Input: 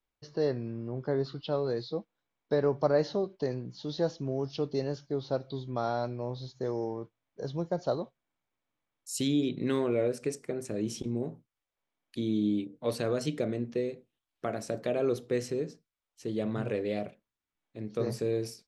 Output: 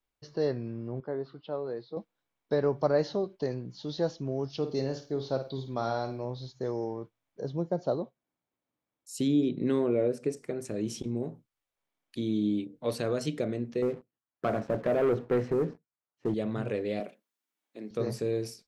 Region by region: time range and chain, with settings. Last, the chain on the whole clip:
1–1.97 HPF 390 Hz 6 dB/oct + tape spacing loss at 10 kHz 33 dB
4.57–6.25 high shelf 8100 Hz +9.5 dB + flutter echo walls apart 9 m, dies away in 0.35 s
7.41–10.37 HPF 200 Hz 6 dB/oct + tilt shelf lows +6 dB, about 700 Hz
13.82–16.34 Chebyshev band-pass 110–1500 Hz + sample leveller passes 2
17–17.91 HPF 210 Hz 24 dB/oct + high shelf 5400 Hz +6 dB
whole clip: dry

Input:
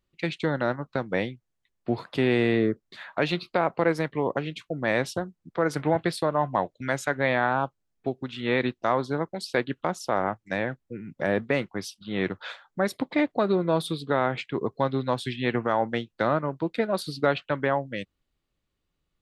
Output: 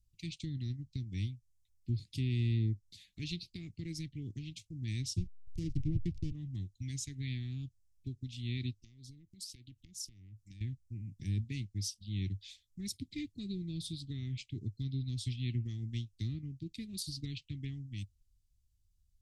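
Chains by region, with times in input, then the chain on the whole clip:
5.17–6.32 tilt shelf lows +5 dB, about 1300 Hz + backlash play -25 dBFS
8.82–10.61 compressor 5:1, threshold -38 dBFS + core saturation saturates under 840 Hz
whole clip: elliptic band-stop 150–5200 Hz, stop band 60 dB; treble ducked by the level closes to 870 Hz, closed at -23 dBFS; EQ curve 100 Hz 0 dB, 150 Hz -17 dB, 320 Hz +3 dB, 910 Hz -4 dB, 2200 Hz +7 dB, 4400 Hz -8 dB, 8600 Hz -5 dB; gain +9 dB

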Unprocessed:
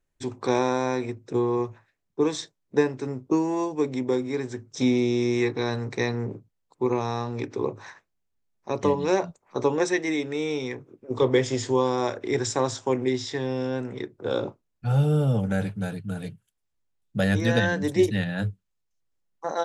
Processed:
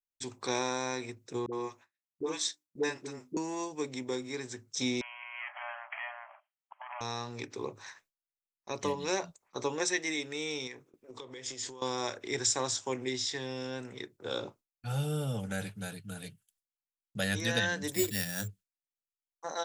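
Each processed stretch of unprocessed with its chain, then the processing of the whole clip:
1.46–3.37 HPF 150 Hz + notches 50/100/150/200/250/300/350 Hz + dispersion highs, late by 67 ms, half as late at 450 Hz
5.01–7.01 compressor, threshold -35 dBFS + overdrive pedal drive 27 dB, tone 1500 Hz, clips at -18 dBFS + brick-wall FIR band-pass 580–3300 Hz
10.67–11.82 bell 79 Hz -10 dB 1.2 oct + compressor 20:1, threshold -32 dBFS
17.92–18.48 air absorption 62 m + careless resampling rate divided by 6×, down none, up hold
whole clip: pre-emphasis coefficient 0.9; gate with hold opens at -58 dBFS; high shelf 6100 Hz -6.5 dB; gain +8 dB

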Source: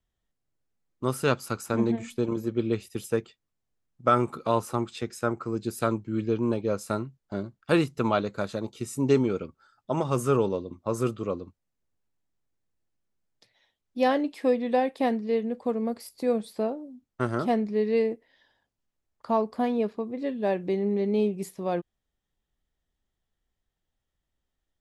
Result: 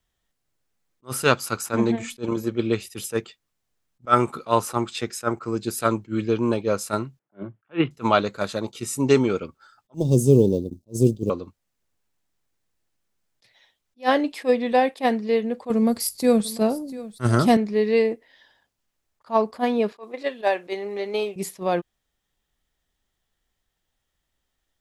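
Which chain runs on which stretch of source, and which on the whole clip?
7.19–7.91 Chebyshev band-pass 110–3300 Hz, order 5 + low-pass opened by the level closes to 1500 Hz, open at -19 dBFS + bell 330 Hz +4 dB 0.33 oct
9.94–11.3 G.711 law mismatch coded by A + Chebyshev band-stop 390–5300 Hz + low shelf 350 Hz +11.5 dB
15.7–17.57 tone controls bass +12 dB, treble +10 dB + echo 0.696 s -18 dB
19.92–21.36 HPF 560 Hz + transient shaper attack +8 dB, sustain +2 dB
whole clip: tilt shelf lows -3.5 dB, about 660 Hz; attack slew limiter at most 390 dB/s; gain +6 dB

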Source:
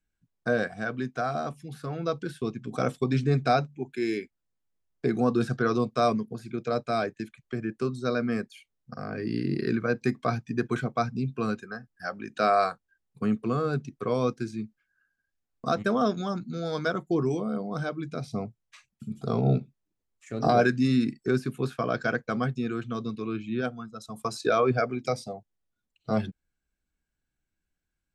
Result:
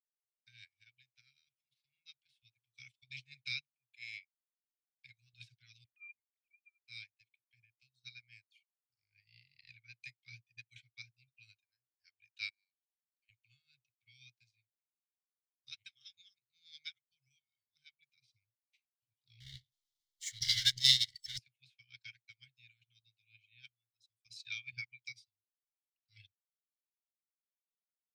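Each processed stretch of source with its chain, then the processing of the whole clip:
5.84–6.88 sine-wave speech + expander -47 dBFS
12.49–13.29 brick-wall FIR high-pass 1500 Hz + compressor 5:1, threshold -53 dBFS
19.4–21.38 tone controls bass -5 dB, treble +8 dB + power-law curve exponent 0.5 + Butterworth band-stop 2500 Hz, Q 2.5
whole clip: Chebyshev band-stop 120–2200 Hz, order 5; three-band isolator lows -17 dB, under 540 Hz, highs -16 dB, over 5300 Hz; upward expander 2.5:1, over -60 dBFS; gain +10.5 dB

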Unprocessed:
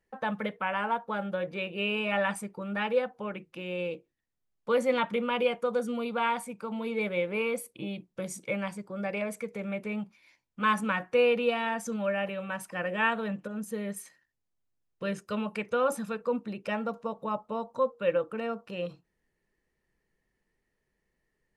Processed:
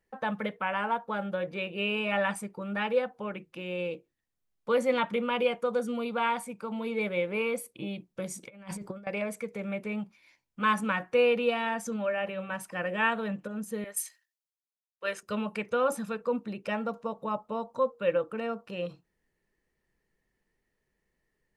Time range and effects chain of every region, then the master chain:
8.43–9.07 low shelf 75 Hz +7 dB + negative-ratio compressor -40 dBFS, ratio -0.5
11.89–12.54 high shelf 5600 Hz -5.5 dB + de-hum 49.21 Hz, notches 6
13.84–15.23 HPF 580 Hz + tilt +1.5 dB/oct + three-band expander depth 70%
whole clip: dry

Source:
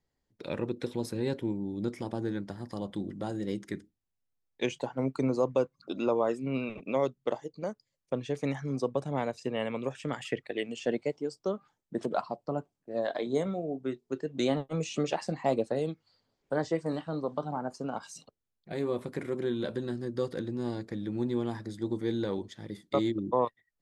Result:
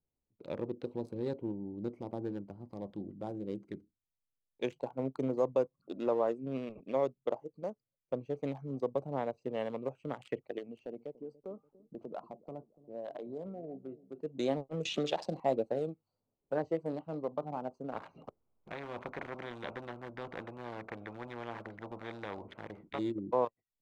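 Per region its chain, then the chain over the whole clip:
10.58–14.21 compressor 4:1, threshold -33 dBFS + high shelf 5800 Hz -11 dB + dark delay 0.289 s, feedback 43%, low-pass 490 Hz, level -15 dB
14.85–15.4 bell 3600 Hz +13.5 dB 0.66 oct + flutter echo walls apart 11.6 m, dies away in 0.23 s + three-band squash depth 70%
17.92–22.99 LPF 2000 Hz 24 dB/oct + low shelf 380 Hz -8.5 dB + spectral compressor 4:1
whole clip: Wiener smoothing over 25 samples; dynamic EQ 610 Hz, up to +6 dB, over -41 dBFS, Q 0.8; gain -7.5 dB

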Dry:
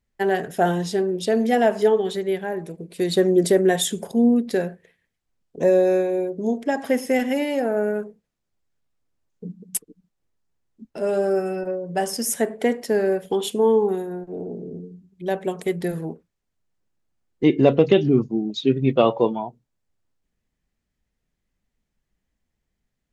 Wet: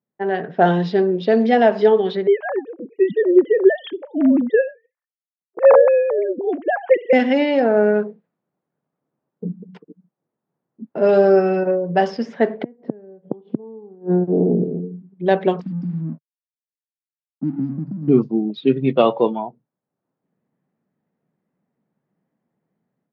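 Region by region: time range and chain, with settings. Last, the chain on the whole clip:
2.27–7.13 sine-wave speech + gate with hold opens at -38 dBFS, closes at -42 dBFS
12.63–14.64 tilt shelf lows +9 dB, about 700 Hz + flipped gate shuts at -14 dBFS, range -33 dB
15.61–18.08 brick-wall FIR band-stop 310–4600 Hz + compressor 3:1, threshold -31 dBFS + backlash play -48.5 dBFS
whole clip: AGC gain up to 11.5 dB; elliptic band-pass 150–4600 Hz, stop band 40 dB; low-pass opened by the level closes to 1000 Hz, open at -8 dBFS; gain -1 dB

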